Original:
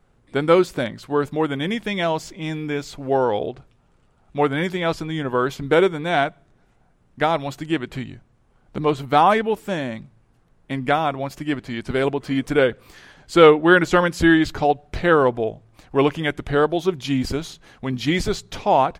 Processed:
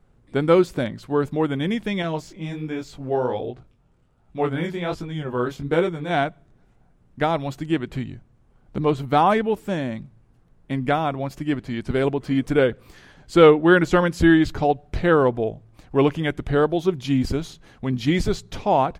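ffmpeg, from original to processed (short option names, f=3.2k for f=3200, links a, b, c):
-filter_complex "[0:a]asettb=1/sr,asplit=3[a][b][c];[a]atrim=end=2.024[d];[b]atrim=start=2.02:end=6.11,asetpts=PTS-STARTPTS,afade=t=in:d=0.004:c=qsin,afade=t=out:st=4.086:d=0.004:c=qsin,flanger=delay=17:depth=7.9:speed=1.3[e];[c]atrim=start=6.106[f];[d][e]acrossfade=d=0.004:c1=hsin:c2=qsin[g];[g][f]acrossfade=d=0.004:c1=qsin:c2=hsin,lowshelf=f=410:g=7,volume=-4dB"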